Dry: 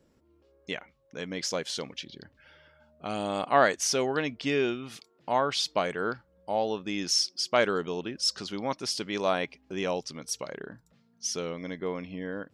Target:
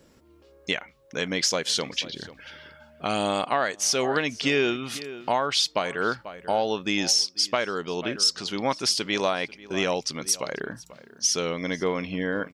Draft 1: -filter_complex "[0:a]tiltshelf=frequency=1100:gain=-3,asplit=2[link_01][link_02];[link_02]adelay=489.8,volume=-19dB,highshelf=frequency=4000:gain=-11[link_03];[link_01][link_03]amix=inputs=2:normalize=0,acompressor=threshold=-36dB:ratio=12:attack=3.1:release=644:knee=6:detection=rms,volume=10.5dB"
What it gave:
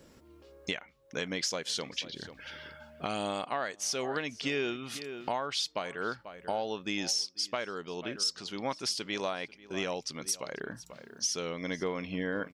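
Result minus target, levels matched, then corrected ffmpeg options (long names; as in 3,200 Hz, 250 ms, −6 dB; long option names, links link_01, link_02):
downward compressor: peak gain reduction +9 dB
-filter_complex "[0:a]tiltshelf=frequency=1100:gain=-3,asplit=2[link_01][link_02];[link_02]adelay=489.8,volume=-19dB,highshelf=frequency=4000:gain=-11[link_03];[link_01][link_03]amix=inputs=2:normalize=0,acompressor=threshold=-26dB:ratio=12:attack=3.1:release=644:knee=6:detection=rms,volume=10.5dB"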